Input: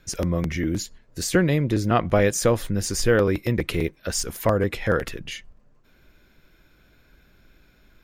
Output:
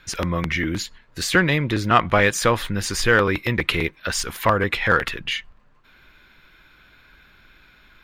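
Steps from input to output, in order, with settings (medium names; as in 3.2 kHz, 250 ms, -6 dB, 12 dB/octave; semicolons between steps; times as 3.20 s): high-order bell 1.9 kHz +10.5 dB 2.6 oct; in parallel at -9 dB: saturation -12.5 dBFS, distortion -11 dB; on the sum: trim -3 dB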